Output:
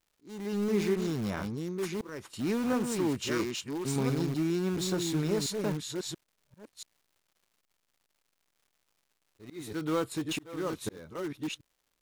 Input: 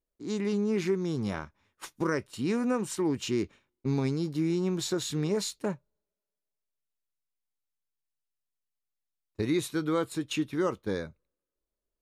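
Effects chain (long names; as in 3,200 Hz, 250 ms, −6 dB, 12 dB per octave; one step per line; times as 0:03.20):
delay that plays each chunk backwards 683 ms, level −5 dB
0:03.31–0:03.96: tilt shelving filter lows −4.5 dB, about 650 Hz
in parallel at −12 dB: wrap-around overflow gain 28 dB
on the sum: volume swells 433 ms
surface crackle 270 per second −57 dBFS
level −1.5 dB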